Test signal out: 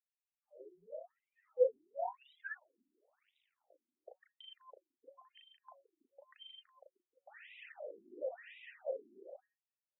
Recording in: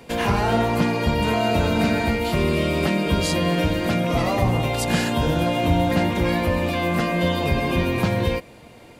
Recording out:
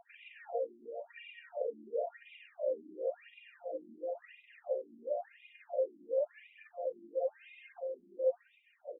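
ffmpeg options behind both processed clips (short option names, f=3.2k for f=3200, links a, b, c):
-filter_complex "[0:a]asoftclip=type=tanh:threshold=-21dB,asplit=3[a][b][c];[a]bandpass=f=530:t=q:w=8,volume=0dB[d];[b]bandpass=f=1.84k:t=q:w=8,volume=-6dB[e];[c]bandpass=f=2.48k:t=q:w=8,volume=-9dB[f];[d][e][f]amix=inputs=3:normalize=0,equalizer=f=5.2k:w=0.59:g=-2.5,asplit=2[g][h];[h]adelay=36,volume=-2.5dB[i];[g][i]amix=inputs=2:normalize=0,bandreject=f=185.4:t=h:w=4,bandreject=f=370.8:t=h:w=4,bandreject=f=556.2:t=h:w=4,bandreject=f=741.6:t=h:w=4,bandreject=f=927:t=h:w=4,bandreject=f=1.1124k:t=h:w=4,bandreject=f=1.2978k:t=h:w=4,bandreject=f=1.4832k:t=h:w=4,bandreject=f=1.6686k:t=h:w=4,bandreject=f=1.854k:t=h:w=4,asplit=2[j][k];[k]adelay=170,highpass=300,lowpass=3.4k,asoftclip=type=hard:threshold=-27dB,volume=-8dB[l];[j][l]amix=inputs=2:normalize=0,acompressor=threshold=-44dB:ratio=2.5,aphaser=in_gain=1:out_gain=1:delay=4.3:decay=0.61:speed=0.9:type=triangular,equalizer=f=630:t=o:w=0.67:g=10,equalizer=f=1.6k:t=o:w=0.67:g=-6,equalizer=f=4k:t=o:w=0.67:g=-7,afftfilt=real='re*between(b*sr/1024,260*pow(2800/260,0.5+0.5*sin(2*PI*0.96*pts/sr))/1.41,260*pow(2800/260,0.5+0.5*sin(2*PI*0.96*pts/sr))*1.41)':imag='im*between(b*sr/1024,260*pow(2800/260,0.5+0.5*sin(2*PI*0.96*pts/sr))/1.41,260*pow(2800/260,0.5+0.5*sin(2*PI*0.96*pts/sr))*1.41)':win_size=1024:overlap=0.75,volume=1.5dB"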